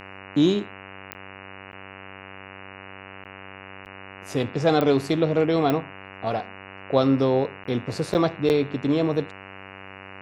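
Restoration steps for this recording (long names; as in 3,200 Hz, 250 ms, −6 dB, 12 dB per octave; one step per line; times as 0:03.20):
click removal
hum removal 96.4 Hz, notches 30
repair the gap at 0:01.14/0:01.72/0:03.24/0:03.85/0:07.64/0:08.14/0:08.49, 9.2 ms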